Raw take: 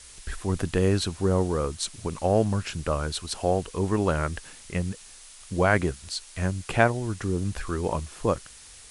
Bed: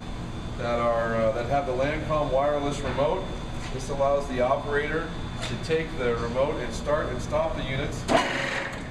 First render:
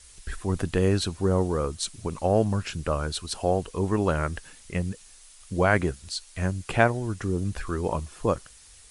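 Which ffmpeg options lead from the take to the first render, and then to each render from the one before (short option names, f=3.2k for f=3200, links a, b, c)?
-af "afftdn=nr=6:nf=-48"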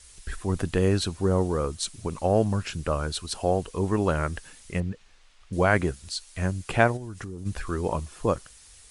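-filter_complex "[0:a]asettb=1/sr,asplit=3[a][b][c];[a]atrim=end=4.804[d];[b]atrim=start=4.8:end=5.53,asetpts=PTS-STARTPTS,afade=t=in:d=0.004:c=qsin,afade=t=out:st=0.726:d=0.004:c=qsin,lowpass=3k[e];[c]atrim=start=5.526[f];[d][e]acrossfade=d=0.004:c1=hsin:c2=qsin[g];[g][f]acrossfade=d=0.004:c1=qsin:c2=hsin,asplit=3[h][i][j];[h]afade=t=out:st=6.96:d=0.02[k];[i]acompressor=threshold=-32dB:ratio=10:attack=3.2:release=140:knee=1:detection=peak,afade=t=in:st=6.96:d=0.02,afade=t=out:st=7.45:d=0.02[l];[j]afade=t=in:st=7.45:d=0.02[m];[k][l][m]amix=inputs=3:normalize=0"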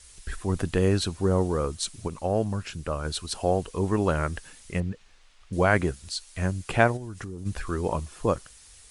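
-filter_complex "[0:a]asplit=3[a][b][c];[a]atrim=end=2.082[d];[b]atrim=start=2.078:end=3.052,asetpts=PTS-STARTPTS,volume=-3.5dB[e];[c]atrim=start=3.048[f];[d][e]acrossfade=d=0.004:c1=hsin:c2=hsin[g];[g][f]acrossfade=d=0.004:c1=hsin:c2=hsin"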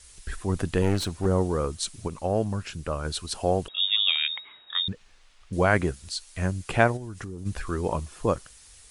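-filter_complex "[0:a]asettb=1/sr,asplit=3[a][b][c];[a]atrim=end=0.824[d];[b]atrim=start=0.82:end=1.26,asetpts=PTS-STARTPTS,afade=t=in:d=0.004:c=qsin,afade=t=out:st=0.436:d=0.004:c=qsin,aeval=exprs='clip(val(0),-1,0.0316)':c=same[e];[c]atrim=start=1.256[f];[d][e]acrossfade=d=0.004:c1=hsin:c2=qsin[g];[g][f]acrossfade=d=0.004:c1=qsin:c2=hsin,asettb=1/sr,asplit=3[h][i][j];[h]atrim=end=3.684[k];[i]atrim=start=3.68:end=4.88,asetpts=PTS-STARTPTS,afade=t=in:d=0.004:c=qsin,afade=t=out:st=1.196:d=0.004:c=qsin,lowpass=f=3.2k:t=q:w=0.5098,lowpass=f=3.2k:t=q:w=0.6013,lowpass=f=3.2k:t=q:w=0.9,lowpass=f=3.2k:t=q:w=2.563,afreqshift=-3800[l];[j]atrim=start=4.876[m];[k][l]acrossfade=d=0.004:c1=hsin:c2=qsin[n];[n][m]acrossfade=d=0.004:c1=qsin:c2=hsin"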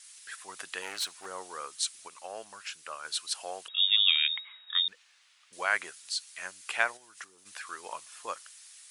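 -af "highpass=1.4k"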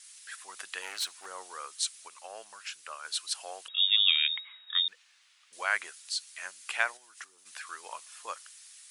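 -af "highpass=f=750:p=1"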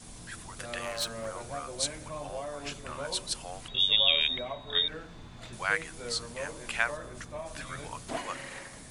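-filter_complex "[1:a]volume=-14.5dB[a];[0:a][a]amix=inputs=2:normalize=0"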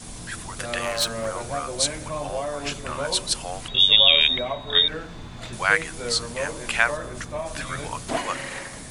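-af "volume=9dB,alimiter=limit=-3dB:level=0:latency=1"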